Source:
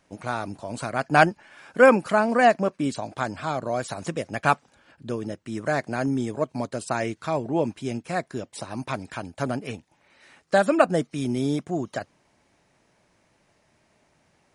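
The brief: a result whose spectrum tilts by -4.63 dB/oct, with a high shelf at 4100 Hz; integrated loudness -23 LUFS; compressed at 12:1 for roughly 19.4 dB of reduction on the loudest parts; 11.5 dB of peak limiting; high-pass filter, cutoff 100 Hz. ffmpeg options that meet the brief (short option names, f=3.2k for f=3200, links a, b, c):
-af "highpass=100,highshelf=f=4.1k:g=5,acompressor=threshold=-29dB:ratio=12,volume=15dB,alimiter=limit=-11.5dB:level=0:latency=1"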